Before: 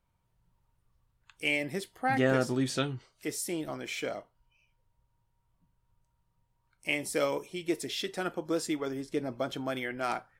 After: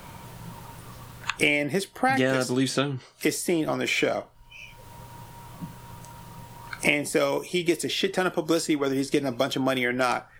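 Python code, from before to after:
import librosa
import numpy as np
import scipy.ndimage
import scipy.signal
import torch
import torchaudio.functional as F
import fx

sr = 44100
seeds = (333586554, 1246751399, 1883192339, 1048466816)

y = fx.band_squash(x, sr, depth_pct=100)
y = F.gain(torch.from_numpy(y), 7.0).numpy()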